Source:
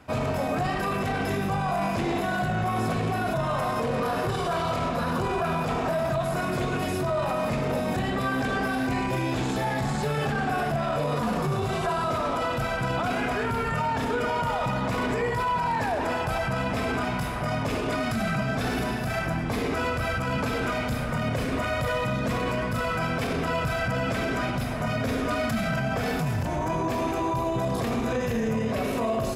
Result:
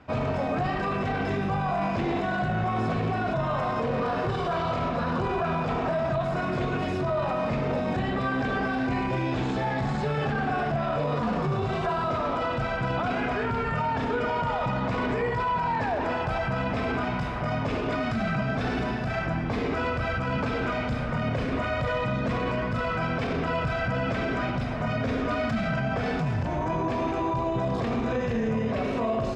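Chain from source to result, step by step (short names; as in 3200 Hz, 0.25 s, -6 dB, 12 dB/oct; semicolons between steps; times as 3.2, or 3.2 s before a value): air absorption 140 m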